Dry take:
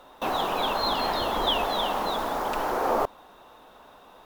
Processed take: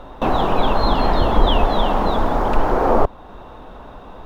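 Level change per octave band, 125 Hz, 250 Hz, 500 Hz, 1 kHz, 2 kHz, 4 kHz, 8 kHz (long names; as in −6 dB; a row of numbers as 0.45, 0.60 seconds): +19.5 dB, +12.5 dB, +9.0 dB, +7.0 dB, +4.5 dB, +0.5 dB, can't be measured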